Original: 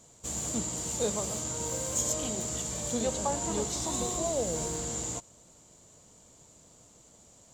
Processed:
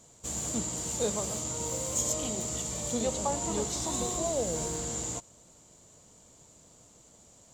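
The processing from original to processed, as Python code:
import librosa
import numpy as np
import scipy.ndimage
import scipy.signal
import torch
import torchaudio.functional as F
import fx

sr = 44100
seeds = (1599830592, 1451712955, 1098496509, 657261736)

y = fx.notch(x, sr, hz=1600.0, q=9.2, at=(1.38, 3.56))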